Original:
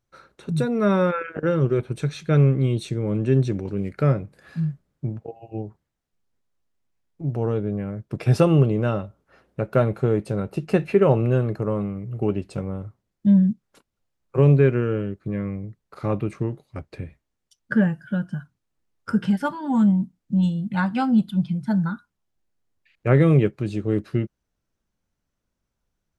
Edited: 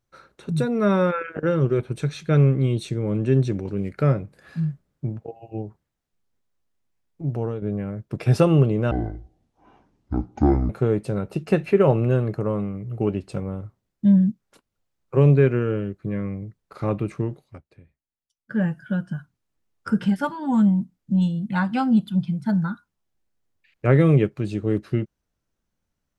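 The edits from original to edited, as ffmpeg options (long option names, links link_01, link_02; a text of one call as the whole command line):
ffmpeg -i in.wav -filter_complex "[0:a]asplit=6[link_01][link_02][link_03][link_04][link_05][link_06];[link_01]atrim=end=7.62,asetpts=PTS-STARTPTS,afade=type=out:start_time=7.34:duration=0.28:silence=0.334965[link_07];[link_02]atrim=start=7.62:end=8.914,asetpts=PTS-STARTPTS,afade=type=in:duration=0.004:curve=hsin:silence=0.334965[link_08];[link_03]atrim=start=8.91:end=9.91,asetpts=PTS-STARTPTS,asetrate=24696,aresample=44100[link_09];[link_04]atrim=start=9.906:end=16.83,asetpts=PTS-STARTPTS,afade=type=out:start_time=6.734:duration=0.19:silence=0.141254[link_10];[link_05]atrim=start=16.83:end=17.7,asetpts=PTS-STARTPTS,volume=-17dB[link_11];[link_06]atrim=start=17.7,asetpts=PTS-STARTPTS,afade=type=in:duration=0.19:silence=0.141254[link_12];[link_07][link_08]concat=n=2:v=0:a=1[link_13];[link_13][link_09]acrossfade=duration=0.004:curve1=hsin:curve2=hsin[link_14];[link_10][link_11][link_12]concat=n=3:v=0:a=1[link_15];[link_14][link_15]acrossfade=duration=0.004:curve1=hsin:curve2=hsin" out.wav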